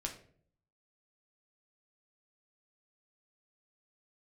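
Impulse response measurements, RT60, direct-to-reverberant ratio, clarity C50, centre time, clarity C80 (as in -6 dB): 0.55 s, 1.5 dB, 9.5 dB, 16 ms, 13.5 dB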